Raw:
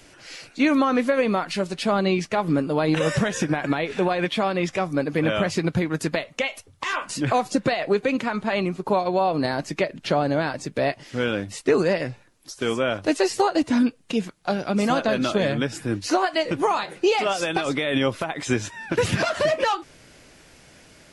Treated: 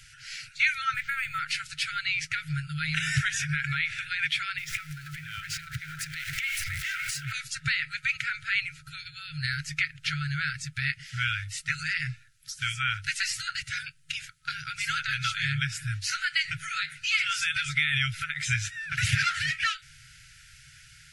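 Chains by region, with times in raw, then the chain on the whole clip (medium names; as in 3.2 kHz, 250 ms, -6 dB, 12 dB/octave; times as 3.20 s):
0.94–1.39 s: tilt EQ -2 dB/octave + decimation joined by straight lines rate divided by 4×
4.58–7.32 s: jump at every zero crossing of -29 dBFS + repeats whose band climbs or falls 278 ms, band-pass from 1 kHz, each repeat 0.7 oct, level -4.5 dB + compression 12:1, threshold -28 dBFS
whole clip: FFT band-reject 160–1300 Hz; dynamic bell 2.2 kHz, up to +6 dB, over -45 dBFS, Q 3.9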